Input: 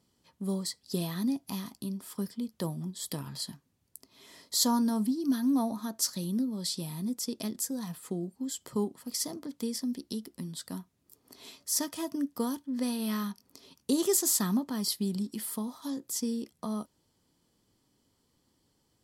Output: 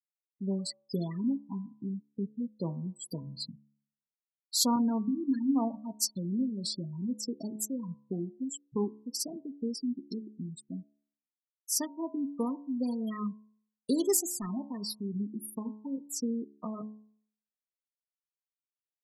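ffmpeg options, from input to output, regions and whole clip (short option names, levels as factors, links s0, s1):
-filter_complex "[0:a]asettb=1/sr,asplit=3[s0][s1][s2];[s0]atrim=end=4.764[s3];[s1]atrim=start=4.76:end=5.9,asetpts=PTS-STARTPTS,afade=t=in:d=0.004:c=qsin,afade=t=out:st=1.136:d=0.004:c=qsin,bandreject=f=50:t=h:w=6,bandreject=f=100:t=h:w=6,bandreject=f=150:t=h:w=6,bandreject=f=200:t=h:w=6,bandreject=f=250:t=h:w=6,bandreject=f=300:t=h:w=6,bandreject=f=350:t=h:w=6,bandreject=f=400:t=h:w=6,agate=range=0.0224:threshold=0.0251:ratio=3:release=100:detection=peak[s4];[s2]atrim=start=5.896[s5];[s3][s4]acrossfade=d=0.004:c1=hsin:c2=qsin[s6];[s6][s5]acrossfade=d=0.004:c1=qsin:c2=hsin,asettb=1/sr,asplit=3[s7][s8][s9];[s7]atrim=end=14.214[s10];[s8]atrim=start=14.21:end=15.14,asetpts=PTS-STARTPTS,afade=t=in:d=0.004:c=qsin,afade=t=out:st=0.926:d=0.004:c=qsin,lowshelf=f=260:g=-7,asoftclip=type=hard:threshold=0.0299[s11];[s9]atrim=start=15.136[s12];[s10][s11]acrossfade=d=0.004:c1=hsin:c2=qsin[s13];[s13][s12]acrossfade=d=0.004:c1=qsin:c2=hsin,afftfilt=real='re*gte(hypot(re,im),0.0316)':imag='im*gte(hypot(re,im),0.0316)':win_size=1024:overlap=0.75,bandreject=f=71.39:t=h:w=4,bandreject=f=142.78:t=h:w=4,bandreject=f=214.17:t=h:w=4,bandreject=f=285.56:t=h:w=4,bandreject=f=356.95:t=h:w=4,bandreject=f=428.34:t=h:w=4,bandreject=f=499.73:t=h:w=4,bandreject=f=571.12:t=h:w=4,bandreject=f=642.51:t=h:w=4,bandreject=f=713.9:t=h:w=4,bandreject=f=785.29:t=h:w=4,bandreject=f=856.68:t=h:w=4,bandreject=f=928.07:t=h:w=4,bandreject=f=999.46:t=h:w=4,bandreject=f=1070.85:t=h:w=4,bandreject=f=1142.24:t=h:w=4"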